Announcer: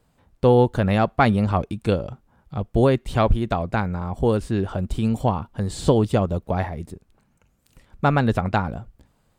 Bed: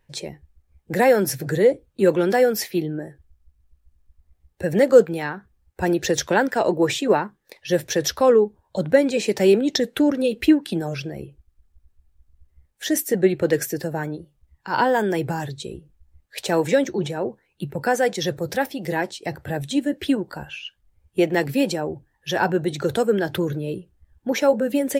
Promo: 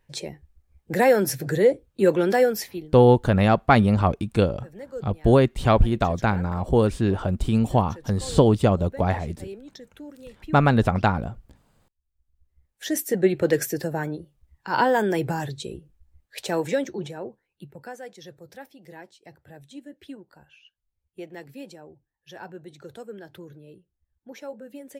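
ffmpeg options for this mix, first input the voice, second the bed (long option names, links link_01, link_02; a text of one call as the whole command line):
ffmpeg -i stem1.wav -i stem2.wav -filter_complex "[0:a]adelay=2500,volume=1dB[link_01];[1:a]volume=20.5dB,afade=type=out:start_time=2.42:duration=0.5:silence=0.0841395,afade=type=in:start_time=12.02:duration=1.39:silence=0.0794328,afade=type=out:start_time=15.57:duration=2.4:silence=0.11885[link_02];[link_01][link_02]amix=inputs=2:normalize=0" out.wav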